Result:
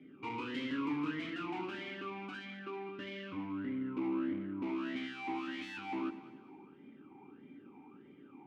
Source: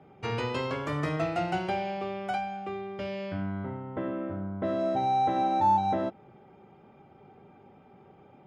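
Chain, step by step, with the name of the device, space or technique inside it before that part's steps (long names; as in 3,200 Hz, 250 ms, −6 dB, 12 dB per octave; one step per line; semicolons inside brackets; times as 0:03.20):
0:02.36–0:02.89: low shelf with overshoot 150 Hz −13.5 dB, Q 1.5
talk box (tube saturation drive 39 dB, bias 0.65; formant filter swept between two vowels i-u 1.6 Hz)
delay that swaps between a low-pass and a high-pass 100 ms, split 890 Hz, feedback 64%, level −11 dB
level +15 dB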